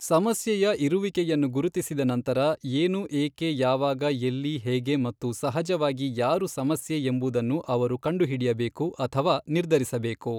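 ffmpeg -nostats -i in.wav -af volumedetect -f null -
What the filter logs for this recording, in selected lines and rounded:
mean_volume: -25.6 dB
max_volume: -10.4 dB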